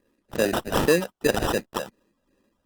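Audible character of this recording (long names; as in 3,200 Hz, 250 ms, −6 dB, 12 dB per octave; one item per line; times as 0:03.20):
phaser sweep stages 12, 2.6 Hz, lowest notch 330–4,300 Hz
aliases and images of a low sample rate 2,200 Hz, jitter 0%
Opus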